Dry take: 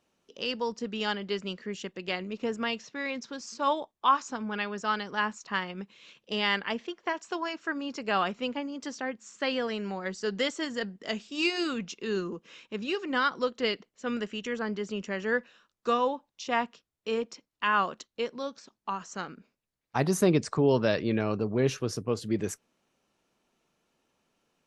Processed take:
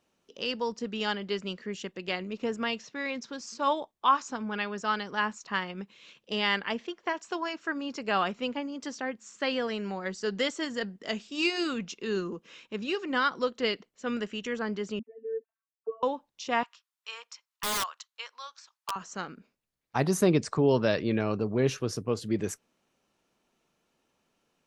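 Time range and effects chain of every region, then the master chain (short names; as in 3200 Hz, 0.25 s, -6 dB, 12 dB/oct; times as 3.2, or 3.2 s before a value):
14.99–16.03 sine-wave speech + robotiser 224 Hz + synth low-pass 300 Hz, resonance Q 2
16.63–18.96 Chebyshev high-pass 1000 Hz, order 3 + wrapped overs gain 24 dB
whole clip: dry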